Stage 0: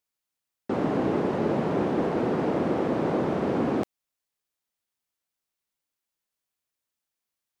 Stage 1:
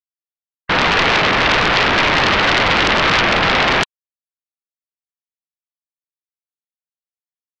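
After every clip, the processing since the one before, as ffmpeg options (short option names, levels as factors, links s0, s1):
-af "afftfilt=real='re*gte(hypot(re,im),0.00708)':imag='im*gte(hypot(re,im),0.00708)':win_size=1024:overlap=0.75,aeval=exprs='0.237*sin(PI/2*7.08*val(0)/0.237)':c=same,crystalizer=i=7:c=0,volume=0.708"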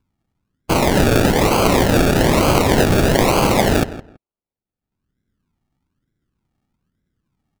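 -filter_complex "[0:a]acrossover=split=280|520|3700[s0][s1][s2][s3];[s0]acompressor=mode=upward:threshold=0.01:ratio=2.5[s4];[s4][s1][s2][s3]amix=inputs=4:normalize=0,acrusher=samples=34:mix=1:aa=0.000001:lfo=1:lforange=20.4:lforate=1.1,asplit=2[s5][s6];[s6]adelay=164,lowpass=f=2600:p=1,volume=0.188,asplit=2[s7][s8];[s8]adelay=164,lowpass=f=2600:p=1,volume=0.19[s9];[s5][s7][s9]amix=inputs=3:normalize=0"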